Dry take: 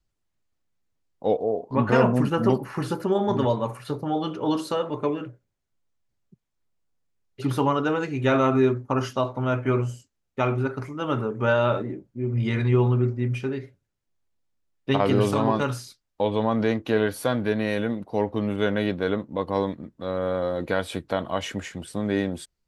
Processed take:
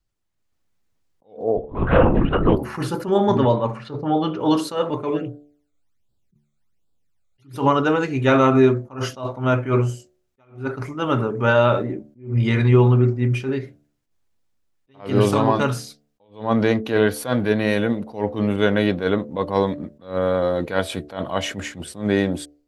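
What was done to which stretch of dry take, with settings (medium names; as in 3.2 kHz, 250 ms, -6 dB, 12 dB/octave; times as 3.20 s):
1.57–2.57 s: LPC vocoder at 8 kHz whisper
3.38–4.40 s: distance through air 140 m
5.17–7.56 s: phase shifter stages 12, 1.3 Hz, lowest notch 280–2100 Hz
whole clip: de-hum 73.21 Hz, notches 10; level rider gain up to 6.5 dB; attacks held to a fixed rise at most 170 dB/s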